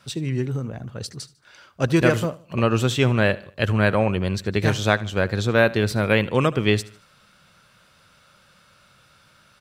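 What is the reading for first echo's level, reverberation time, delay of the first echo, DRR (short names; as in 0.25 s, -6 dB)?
-20.0 dB, none, 75 ms, none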